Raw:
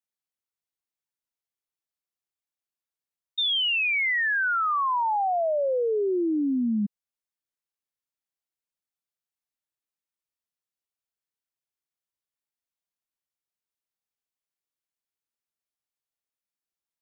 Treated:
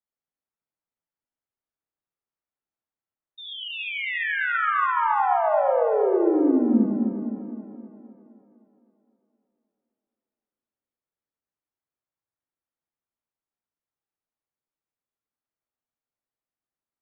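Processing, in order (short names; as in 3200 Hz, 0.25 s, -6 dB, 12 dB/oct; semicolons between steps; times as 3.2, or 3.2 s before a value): LPF 1500 Hz 12 dB/oct; split-band echo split 510 Hz, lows 0.259 s, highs 0.342 s, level -5 dB; non-linear reverb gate 0.13 s rising, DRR 1.5 dB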